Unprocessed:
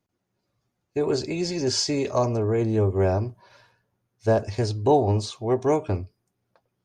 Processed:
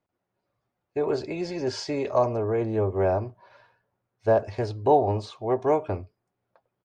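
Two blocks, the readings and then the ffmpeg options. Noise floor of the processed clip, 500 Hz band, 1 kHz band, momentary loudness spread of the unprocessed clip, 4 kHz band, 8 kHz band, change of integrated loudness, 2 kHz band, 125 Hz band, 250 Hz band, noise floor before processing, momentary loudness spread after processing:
−82 dBFS, −0.5 dB, +1.5 dB, 9 LU, −9.5 dB, below −10 dB, −1.5 dB, −1.5 dB, −6.0 dB, −4.0 dB, −79 dBFS, 10 LU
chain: -af "firequalizer=gain_entry='entry(210,0);entry(600,8);entry(6300,-8)':delay=0.05:min_phase=1,volume=-6dB"

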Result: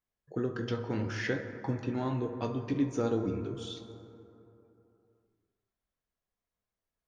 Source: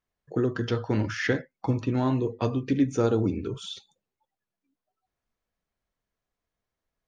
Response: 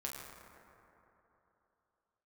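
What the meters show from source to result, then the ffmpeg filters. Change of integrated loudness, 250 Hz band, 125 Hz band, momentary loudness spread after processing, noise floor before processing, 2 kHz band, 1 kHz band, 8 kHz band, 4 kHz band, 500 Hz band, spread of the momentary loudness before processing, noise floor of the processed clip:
−6.5 dB, −6.5 dB, −7.0 dB, 11 LU, below −85 dBFS, −6.0 dB, −5.5 dB, can't be measured, −6.0 dB, −6.0 dB, 10 LU, below −85 dBFS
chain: -filter_complex "[0:a]asplit=2[link_01][link_02];[1:a]atrim=start_sample=2205,adelay=21[link_03];[link_02][link_03]afir=irnorm=-1:irlink=0,volume=-5.5dB[link_04];[link_01][link_04]amix=inputs=2:normalize=0,volume=-7dB"

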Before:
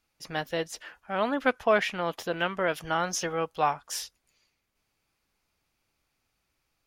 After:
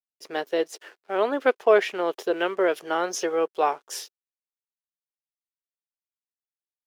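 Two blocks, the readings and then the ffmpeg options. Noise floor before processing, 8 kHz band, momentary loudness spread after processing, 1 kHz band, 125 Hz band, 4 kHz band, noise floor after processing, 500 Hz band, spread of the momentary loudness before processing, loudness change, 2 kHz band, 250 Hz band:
−78 dBFS, −0.5 dB, 14 LU, +1.5 dB, below −10 dB, −0.5 dB, below −85 dBFS, +6.5 dB, 11 LU, +4.0 dB, +0.5 dB, +2.5 dB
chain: -af "aeval=exprs='sgn(val(0))*max(abs(val(0))-0.00178,0)':channel_layout=same,highpass=frequency=390:width_type=q:width=4.4"

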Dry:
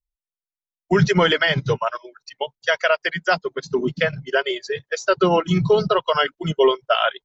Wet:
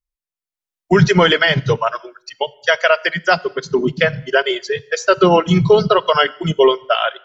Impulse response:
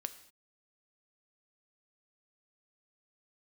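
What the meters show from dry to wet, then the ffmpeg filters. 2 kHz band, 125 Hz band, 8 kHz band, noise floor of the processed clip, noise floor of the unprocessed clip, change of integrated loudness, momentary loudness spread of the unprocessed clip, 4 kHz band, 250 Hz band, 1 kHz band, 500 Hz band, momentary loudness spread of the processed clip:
+4.5 dB, +5.0 dB, can't be measured, below −85 dBFS, below −85 dBFS, +4.5 dB, 9 LU, +4.5 dB, +5.0 dB, +4.5 dB, +5.0 dB, 8 LU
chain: -filter_complex "[0:a]dynaudnorm=framelen=220:gausssize=5:maxgain=11.5dB,asplit=2[link_01][link_02];[1:a]atrim=start_sample=2205[link_03];[link_02][link_03]afir=irnorm=-1:irlink=0,volume=-4.5dB[link_04];[link_01][link_04]amix=inputs=2:normalize=0,volume=-3.5dB"

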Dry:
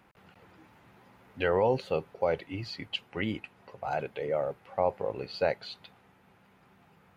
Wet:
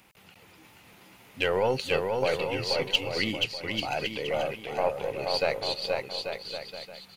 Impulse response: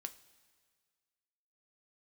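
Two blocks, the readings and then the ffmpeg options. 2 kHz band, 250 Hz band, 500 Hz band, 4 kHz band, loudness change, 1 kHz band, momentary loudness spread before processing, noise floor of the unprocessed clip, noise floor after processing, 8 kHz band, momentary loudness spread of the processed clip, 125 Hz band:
+7.0 dB, +1.5 dB, +2.0 dB, +12.0 dB, +3.0 dB, +2.0 dB, 12 LU, −62 dBFS, −56 dBFS, can't be measured, 8 LU, +1.0 dB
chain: -af "aexciter=amount=3.6:drive=4.2:freq=2200,aeval=exprs='0.376*(cos(1*acos(clip(val(0)/0.376,-1,1)))-cos(1*PI/2))+0.0168*(cos(6*acos(clip(val(0)/0.376,-1,1)))-cos(6*PI/2))':channel_layout=same,aecho=1:1:480|840|1110|1312|1464:0.631|0.398|0.251|0.158|0.1"

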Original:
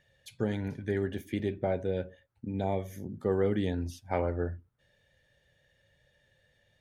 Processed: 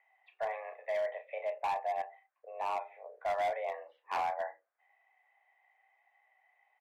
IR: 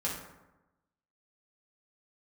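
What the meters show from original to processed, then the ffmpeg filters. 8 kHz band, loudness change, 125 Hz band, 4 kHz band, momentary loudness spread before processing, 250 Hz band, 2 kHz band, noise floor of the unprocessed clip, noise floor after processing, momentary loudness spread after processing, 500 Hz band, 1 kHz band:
can't be measured, −4.0 dB, below −35 dB, −3.5 dB, 9 LU, below −30 dB, +1.0 dB, −71 dBFS, −80 dBFS, 11 LU, −5.0 dB, +6.5 dB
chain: -filter_complex "[0:a]asplit=2[link_01][link_02];[link_02]adelay=33,volume=-8.5dB[link_03];[link_01][link_03]amix=inputs=2:normalize=0,highpass=frequency=370:width_type=q:width=0.5412,highpass=frequency=370:width_type=q:width=1.307,lowpass=frequency=2200:width_type=q:width=0.5176,lowpass=frequency=2200:width_type=q:width=0.7071,lowpass=frequency=2200:width_type=q:width=1.932,afreqshift=230,asoftclip=type=hard:threshold=-28.5dB"

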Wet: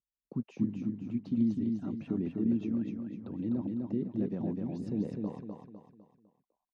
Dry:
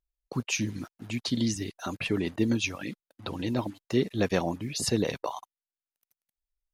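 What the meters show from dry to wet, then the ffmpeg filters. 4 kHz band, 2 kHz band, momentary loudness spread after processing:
below −25 dB, below −20 dB, 10 LU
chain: -af "alimiter=limit=-19.5dB:level=0:latency=1:release=51,bandpass=frequency=210:width_type=q:width=2:csg=0,aecho=1:1:252|504|756|1008|1260:0.668|0.274|0.112|0.0461|0.0189,volume=1.5dB"

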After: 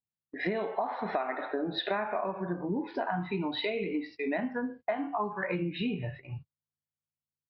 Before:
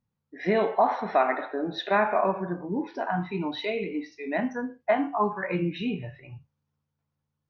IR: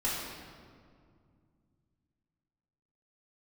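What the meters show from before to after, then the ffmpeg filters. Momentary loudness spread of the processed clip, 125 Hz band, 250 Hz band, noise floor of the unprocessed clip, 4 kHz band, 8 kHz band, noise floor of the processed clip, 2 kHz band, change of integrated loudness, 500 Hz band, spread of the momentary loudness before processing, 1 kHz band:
4 LU, −3.0 dB, −3.5 dB, −82 dBFS, 0.0 dB, can't be measured, below −85 dBFS, −4.5 dB, −5.5 dB, −6.0 dB, 9 LU, −7.5 dB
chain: -af "agate=range=-25dB:threshold=-46dB:ratio=16:detection=peak,acompressor=threshold=-32dB:ratio=12,aresample=11025,aresample=44100,volume=4dB"

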